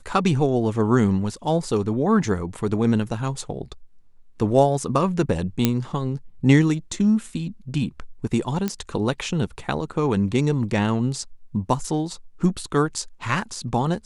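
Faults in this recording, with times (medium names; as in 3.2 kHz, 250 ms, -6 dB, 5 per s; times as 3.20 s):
5.65 s: pop -3 dBFS
8.68 s: pop -11 dBFS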